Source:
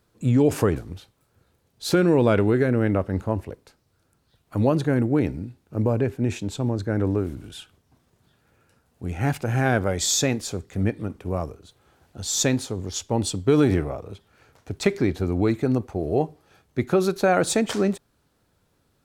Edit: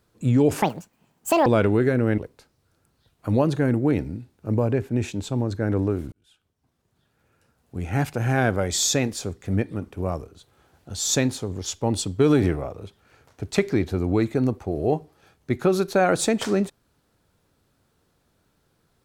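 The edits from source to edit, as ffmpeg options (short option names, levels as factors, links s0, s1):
-filter_complex "[0:a]asplit=5[s0][s1][s2][s3][s4];[s0]atrim=end=0.624[s5];[s1]atrim=start=0.62:end=2.2,asetpts=PTS-STARTPTS,asetrate=82908,aresample=44100[s6];[s2]atrim=start=2.196:end=2.922[s7];[s3]atrim=start=3.458:end=7.4,asetpts=PTS-STARTPTS,afade=t=out:st=3.938:d=0.004:c=hsin[s8];[s4]atrim=start=7.4,asetpts=PTS-STARTPTS,afade=t=in:d=1.73[s9];[s5][s6]acrossfade=d=0.004:c1=hsin:c2=hsin[s10];[s10][s7]acrossfade=d=0.004:c1=hsin:c2=hsin[s11];[s8][s9]concat=n=2:v=0:a=1[s12];[s11][s12]acrossfade=d=0.004:c1=hsin:c2=hsin"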